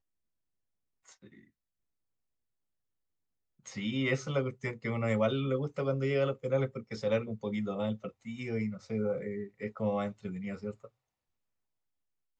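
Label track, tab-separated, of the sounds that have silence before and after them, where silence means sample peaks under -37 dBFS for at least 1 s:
3.670000	10.850000	sound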